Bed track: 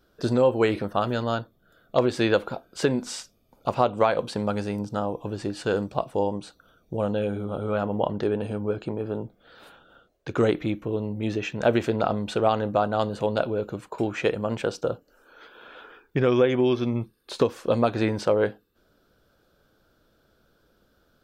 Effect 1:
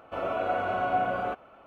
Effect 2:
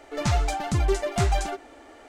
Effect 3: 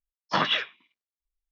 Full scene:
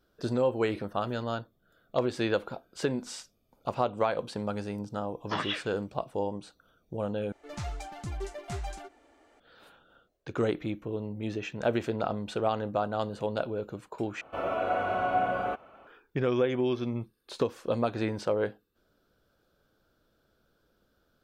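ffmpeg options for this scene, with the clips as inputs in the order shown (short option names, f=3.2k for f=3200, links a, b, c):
-filter_complex "[0:a]volume=-6.5dB[a];[3:a]equalizer=f=4.4k:t=o:w=0.23:g=-5.5[b];[a]asplit=3[c][d][e];[c]atrim=end=7.324[f];[2:a]atrim=end=2.08,asetpts=PTS-STARTPTS,volume=-13.5dB[g];[d]atrim=start=9.396:end=14.214[h];[1:a]atrim=end=1.66,asetpts=PTS-STARTPTS,volume=-0.5dB[i];[e]atrim=start=15.866[j];[b]atrim=end=1.51,asetpts=PTS-STARTPTS,volume=-8dB,afade=t=in:d=0.004:c=hsin,afade=t=out:st=1.506:d=0.004:c=hsin,adelay=4980[k];[f][g]acrossfade=d=0.004:c1=hsin:c2=hsin[l];[l][h]acrossfade=d=0.004:c1=hsin:c2=hsin[m];[m][i]acrossfade=d=0.004:c1=hsin:c2=hsin[n];[n][j]acrossfade=d=0.004:c1=hsin:c2=hsin[o];[o][k]amix=inputs=2:normalize=0"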